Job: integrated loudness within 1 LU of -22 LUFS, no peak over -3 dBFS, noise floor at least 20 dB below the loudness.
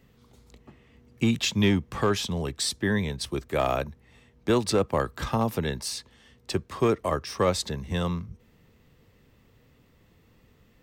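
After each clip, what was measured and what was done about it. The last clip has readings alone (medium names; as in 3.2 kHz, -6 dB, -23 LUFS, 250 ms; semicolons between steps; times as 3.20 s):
clipped samples 0.2%; clipping level -14.5 dBFS; loudness -27.5 LUFS; peak level -14.5 dBFS; loudness target -22.0 LUFS
-> clip repair -14.5 dBFS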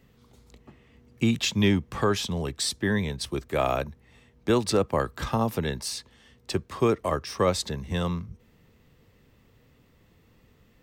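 clipped samples 0.0%; loudness -27.0 LUFS; peak level -11.0 dBFS; loudness target -22.0 LUFS
-> trim +5 dB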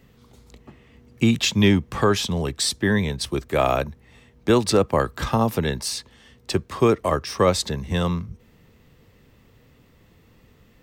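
loudness -22.0 LUFS; peak level -6.0 dBFS; noise floor -56 dBFS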